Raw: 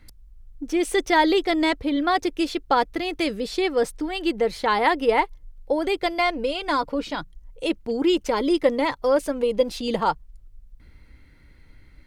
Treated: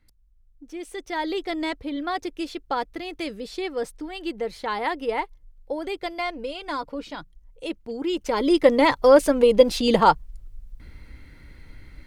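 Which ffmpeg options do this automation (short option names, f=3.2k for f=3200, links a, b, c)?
-af "volume=6dB,afade=t=in:st=1:d=0.48:silence=0.473151,afade=t=in:st=8.1:d=0.84:silence=0.237137"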